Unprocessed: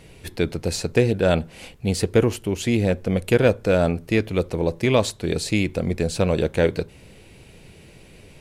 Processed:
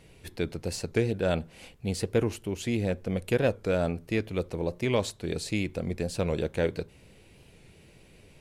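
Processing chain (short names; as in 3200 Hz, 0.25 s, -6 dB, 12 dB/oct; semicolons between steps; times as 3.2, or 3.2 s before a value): record warp 45 rpm, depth 100 cents; gain -8 dB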